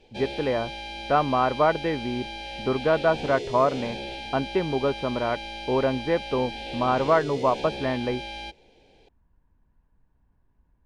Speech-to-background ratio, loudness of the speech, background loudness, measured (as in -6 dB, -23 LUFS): 9.5 dB, -25.5 LUFS, -35.0 LUFS